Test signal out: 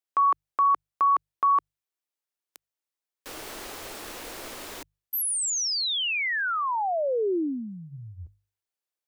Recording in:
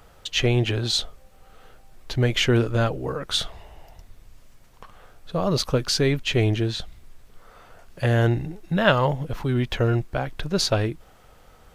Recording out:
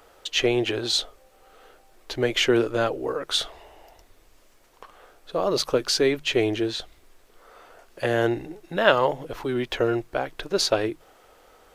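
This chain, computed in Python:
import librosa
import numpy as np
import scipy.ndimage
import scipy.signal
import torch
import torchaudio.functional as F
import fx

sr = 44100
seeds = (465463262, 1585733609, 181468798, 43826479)

y = fx.low_shelf_res(x, sr, hz=240.0, db=-10.5, q=1.5)
y = fx.hum_notches(y, sr, base_hz=50, count=3)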